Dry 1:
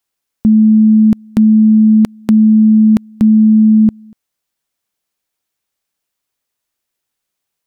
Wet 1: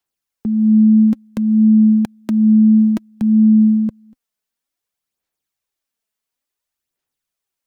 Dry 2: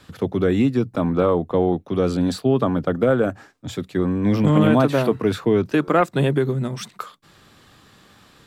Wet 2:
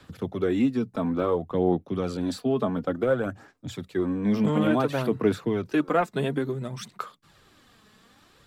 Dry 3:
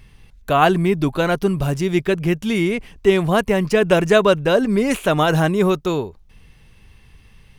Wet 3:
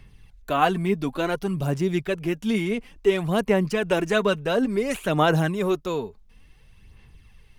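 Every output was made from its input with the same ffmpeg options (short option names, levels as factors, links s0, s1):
-filter_complex "[0:a]aphaser=in_gain=1:out_gain=1:delay=4.7:decay=0.45:speed=0.57:type=sinusoidal,acrossover=split=120|2300[s0][s1][s2];[s0]acompressor=threshold=0.0178:ratio=6[s3];[s3][s1][s2]amix=inputs=3:normalize=0,volume=0.447"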